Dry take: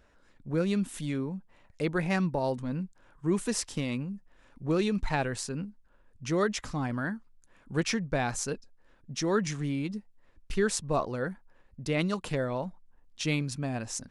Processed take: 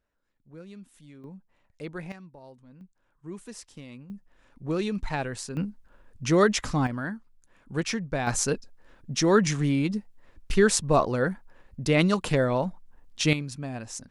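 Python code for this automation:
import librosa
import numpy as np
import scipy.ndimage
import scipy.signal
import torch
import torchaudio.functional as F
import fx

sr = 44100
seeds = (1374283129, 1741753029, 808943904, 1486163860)

y = fx.gain(x, sr, db=fx.steps((0.0, -17.0), (1.24, -8.0), (2.12, -19.0), (2.81, -12.0), (4.1, -1.0), (5.57, 7.0), (6.87, 0.0), (8.27, 7.0), (13.33, -2.0)))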